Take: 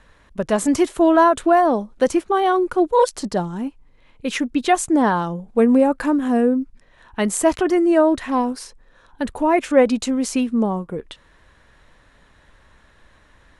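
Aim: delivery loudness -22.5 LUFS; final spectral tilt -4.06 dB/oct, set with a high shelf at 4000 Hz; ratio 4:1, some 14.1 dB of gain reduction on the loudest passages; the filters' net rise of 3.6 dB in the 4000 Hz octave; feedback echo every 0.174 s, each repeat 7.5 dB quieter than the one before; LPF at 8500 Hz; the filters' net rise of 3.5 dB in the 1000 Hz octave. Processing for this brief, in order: LPF 8500 Hz; bell 1000 Hz +4.5 dB; high shelf 4000 Hz -6.5 dB; bell 4000 Hz +8.5 dB; compressor 4:1, threshold -25 dBFS; feedback echo 0.174 s, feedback 42%, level -7.5 dB; gain +5 dB

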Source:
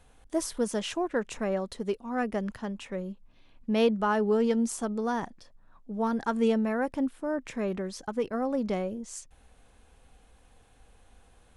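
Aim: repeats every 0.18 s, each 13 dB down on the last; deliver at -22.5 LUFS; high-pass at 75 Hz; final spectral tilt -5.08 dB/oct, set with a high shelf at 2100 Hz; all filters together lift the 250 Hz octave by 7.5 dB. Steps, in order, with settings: HPF 75 Hz; bell 250 Hz +8.5 dB; high shelf 2100 Hz +7.5 dB; feedback echo 0.18 s, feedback 22%, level -13 dB; gain +2 dB

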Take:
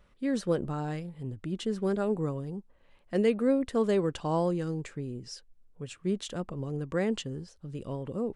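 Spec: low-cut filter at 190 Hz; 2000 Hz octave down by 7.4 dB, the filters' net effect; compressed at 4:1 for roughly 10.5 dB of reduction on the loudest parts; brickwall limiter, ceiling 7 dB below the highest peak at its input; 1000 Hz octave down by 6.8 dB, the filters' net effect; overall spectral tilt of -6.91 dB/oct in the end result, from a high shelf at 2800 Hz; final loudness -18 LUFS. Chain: HPF 190 Hz; bell 1000 Hz -7.5 dB; bell 2000 Hz -4 dB; high shelf 2800 Hz -7 dB; compressor 4:1, threshold -35 dBFS; gain +25 dB; limiter -7.5 dBFS

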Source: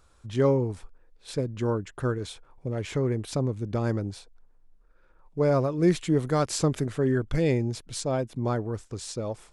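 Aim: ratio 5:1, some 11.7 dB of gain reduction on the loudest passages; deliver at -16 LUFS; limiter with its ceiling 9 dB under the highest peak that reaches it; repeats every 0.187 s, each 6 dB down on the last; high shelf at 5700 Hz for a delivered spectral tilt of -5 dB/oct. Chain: high shelf 5700 Hz +8.5 dB; compressor 5:1, threshold -31 dBFS; limiter -26.5 dBFS; feedback echo 0.187 s, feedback 50%, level -6 dB; gain +20 dB

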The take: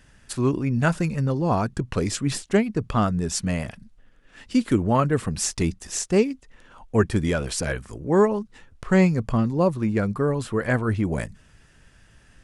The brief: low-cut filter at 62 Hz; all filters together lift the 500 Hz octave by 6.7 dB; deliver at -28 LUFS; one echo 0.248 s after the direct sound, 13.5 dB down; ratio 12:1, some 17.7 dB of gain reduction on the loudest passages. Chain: HPF 62 Hz; bell 500 Hz +8.5 dB; compressor 12:1, threshold -27 dBFS; echo 0.248 s -13.5 dB; gain +4 dB

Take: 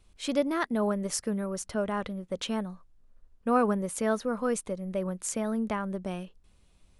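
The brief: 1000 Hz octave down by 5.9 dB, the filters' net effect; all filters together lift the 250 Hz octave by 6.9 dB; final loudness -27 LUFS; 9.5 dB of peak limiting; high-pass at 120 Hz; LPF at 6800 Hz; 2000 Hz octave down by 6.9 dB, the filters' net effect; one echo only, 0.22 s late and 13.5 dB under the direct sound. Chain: HPF 120 Hz; LPF 6800 Hz; bell 250 Hz +9 dB; bell 1000 Hz -7 dB; bell 2000 Hz -6.5 dB; limiter -20.5 dBFS; echo 0.22 s -13.5 dB; gain +2.5 dB

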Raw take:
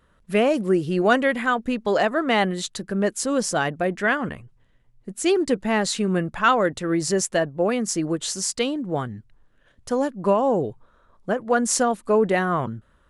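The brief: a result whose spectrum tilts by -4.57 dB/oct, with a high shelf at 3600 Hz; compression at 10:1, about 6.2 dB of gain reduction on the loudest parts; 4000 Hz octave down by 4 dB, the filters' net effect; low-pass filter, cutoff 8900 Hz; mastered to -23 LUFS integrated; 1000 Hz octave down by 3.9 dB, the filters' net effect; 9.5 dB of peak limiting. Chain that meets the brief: LPF 8900 Hz; bell 1000 Hz -5.5 dB; high shelf 3600 Hz +3 dB; bell 4000 Hz -7.5 dB; compressor 10:1, threshold -22 dBFS; gain +6.5 dB; limiter -13 dBFS

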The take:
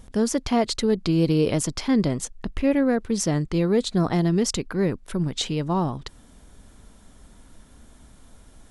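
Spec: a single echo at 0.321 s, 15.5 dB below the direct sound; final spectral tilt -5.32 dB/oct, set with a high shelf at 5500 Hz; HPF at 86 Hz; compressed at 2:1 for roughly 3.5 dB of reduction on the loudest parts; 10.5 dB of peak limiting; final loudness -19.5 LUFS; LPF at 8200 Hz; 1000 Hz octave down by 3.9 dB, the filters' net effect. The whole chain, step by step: HPF 86 Hz; LPF 8200 Hz; bell 1000 Hz -5.5 dB; high shelf 5500 Hz -6 dB; compressor 2:1, threshold -23 dBFS; limiter -24.5 dBFS; echo 0.321 s -15.5 dB; gain +14 dB

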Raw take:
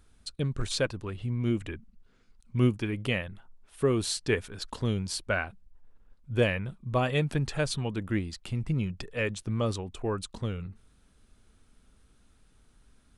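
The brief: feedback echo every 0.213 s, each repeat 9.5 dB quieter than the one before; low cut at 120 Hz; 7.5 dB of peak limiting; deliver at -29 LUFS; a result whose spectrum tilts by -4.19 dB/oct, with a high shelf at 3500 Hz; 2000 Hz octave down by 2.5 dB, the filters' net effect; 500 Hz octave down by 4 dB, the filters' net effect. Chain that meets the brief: HPF 120 Hz; bell 500 Hz -5 dB; bell 2000 Hz -6 dB; high shelf 3500 Hz +9 dB; limiter -20 dBFS; feedback echo 0.213 s, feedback 33%, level -9.5 dB; gain +4 dB

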